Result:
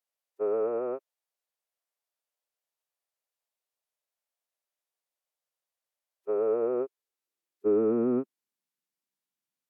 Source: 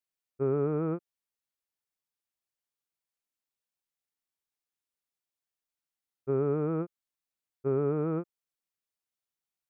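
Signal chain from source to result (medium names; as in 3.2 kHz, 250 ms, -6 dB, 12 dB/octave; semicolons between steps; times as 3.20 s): formant-preserving pitch shift -4.5 st; high-pass sweep 560 Hz -> 190 Hz, 6.35–8.64 s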